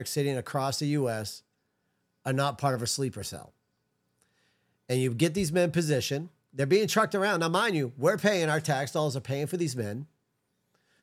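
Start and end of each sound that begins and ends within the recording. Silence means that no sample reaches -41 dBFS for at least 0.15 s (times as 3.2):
2.26–3.45
4.89–6.27
6.57–10.04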